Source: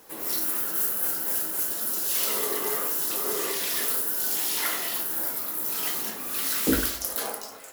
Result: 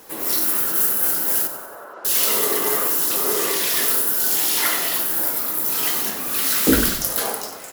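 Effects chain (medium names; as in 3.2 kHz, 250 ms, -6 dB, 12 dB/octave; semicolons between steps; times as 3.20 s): 1.47–2.05 s: Chebyshev band-pass 520–1300 Hz, order 2; frequency-shifting echo 93 ms, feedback 51%, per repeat -37 Hz, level -11.5 dB; trim +7 dB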